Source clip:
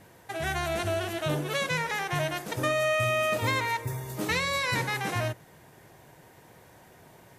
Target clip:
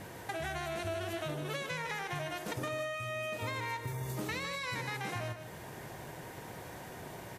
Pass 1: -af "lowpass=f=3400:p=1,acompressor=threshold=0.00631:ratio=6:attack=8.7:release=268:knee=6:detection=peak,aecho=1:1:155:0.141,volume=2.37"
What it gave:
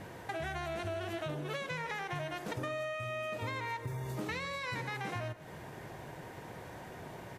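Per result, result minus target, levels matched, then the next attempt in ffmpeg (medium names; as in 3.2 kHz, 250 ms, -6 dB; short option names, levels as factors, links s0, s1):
echo-to-direct -8.5 dB; 8 kHz band -5.5 dB
-af "lowpass=f=3400:p=1,acompressor=threshold=0.00631:ratio=6:attack=8.7:release=268:knee=6:detection=peak,aecho=1:1:155:0.376,volume=2.37"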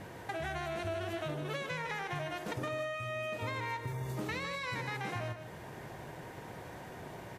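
8 kHz band -5.5 dB
-af "lowpass=f=13000:p=1,acompressor=threshold=0.00631:ratio=6:attack=8.7:release=268:knee=6:detection=peak,aecho=1:1:155:0.376,volume=2.37"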